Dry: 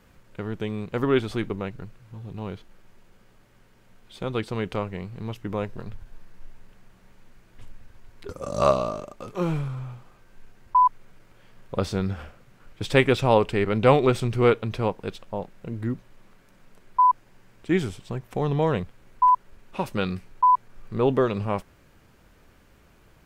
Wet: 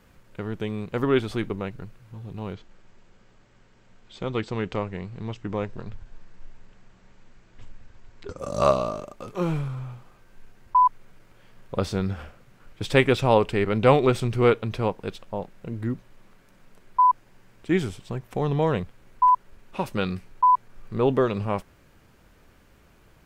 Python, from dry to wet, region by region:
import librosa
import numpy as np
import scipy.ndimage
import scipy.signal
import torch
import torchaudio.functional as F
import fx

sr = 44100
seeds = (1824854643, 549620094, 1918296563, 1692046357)

y = fx.chain(x, sr, fx.brickwall_lowpass(high_hz=8200.0),
    fx.doppler_dist(depth_ms=0.1), at=(2.53, 8.39))